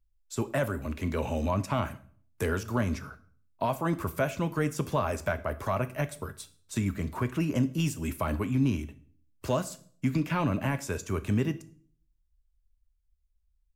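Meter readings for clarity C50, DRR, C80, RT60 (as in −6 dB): 17.0 dB, 11.0 dB, 21.0 dB, 0.50 s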